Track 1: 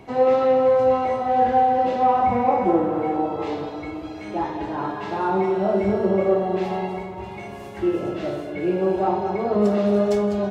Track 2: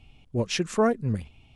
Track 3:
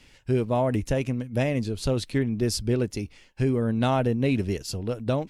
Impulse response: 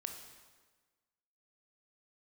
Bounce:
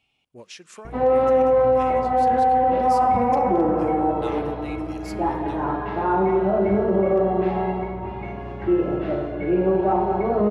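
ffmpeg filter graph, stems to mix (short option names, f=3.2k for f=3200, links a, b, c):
-filter_complex "[0:a]lowpass=2.1k,aeval=exprs='val(0)+0.0112*(sin(2*PI*60*n/s)+sin(2*PI*2*60*n/s)/2+sin(2*PI*3*60*n/s)/3+sin(2*PI*4*60*n/s)/4+sin(2*PI*5*60*n/s)/5)':c=same,asoftclip=type=hard:threshold=-9.5dB,adelay=850,volume=0dB,asplit=2[a][b];[b]volume=-8dB[c];[1:a]highpass=f=810:p=1,acompressor=threshold=-31dB:ratio=6,volume=-7.5dB,asplit=3[d][e][f];[e]volume=-18dB[g];[2:a]highpass=f=1.2k:w=0.5412,highpass=f=1.2k:w=1.3066,adelay=400,volume=-11.5dB,asplit=2[h][i];[i]volume=-7.5dB[j];[f]apad=whole_len=251169[k];[h][k]sidechaincompress=threshold=-53dB:ratio=8:attack=16:release=428[l];[3:a]atrim=start_sample=2205[m];[c][g][j]amix=inputs=3:normalize=0[n];[n][m]afir=irnorm=-1:irlink=0[o];[a][d][l][o]amix=inputs=4:normalize=0,alimiter=limit=-11.5dB:level=0:latency=1:release=29"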